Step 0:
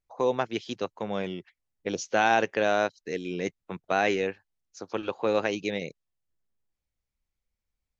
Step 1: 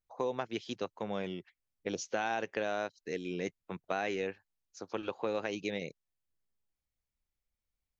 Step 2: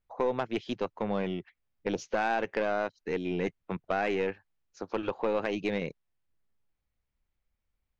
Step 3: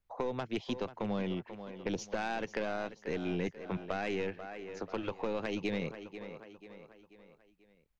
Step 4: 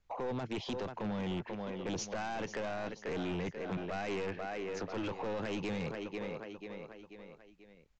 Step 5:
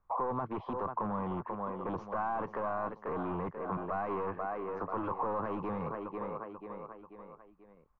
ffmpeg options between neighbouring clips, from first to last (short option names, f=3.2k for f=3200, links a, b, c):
-af "acompressor=threshold=-25dB:ratio=6,volume=-4.5dB"
-af "bass=f=250:g=2,treble=f=4k:g=-13,aeval=exprs='(tanh(20*val(0)+0.3)-tanh(0.3))/20':c=same,volume=7dB"
-filter_complex "[0:a]aecho=1:1:488|976|1464|1952:0.178|0.0818|0.0376|0.0173,acrossover=split=230|3000[a][b][c];[b]acompressor=threshold=-37dB:ratio=2.5[d];[a][d][c]amix=inputs=3:normalize=0"
-af "alimiter=level_in=7.5dB:limit=-24dB:level=0:latency=1:release=12,volume=-7.5dB,aresample=16000,asoftclip=type=tanh:threshold=-39.5dB,aresample=44100,volume=7dB"
-af "lowpass=f=1.1k:t=q:w=6.6,volume=-1dB"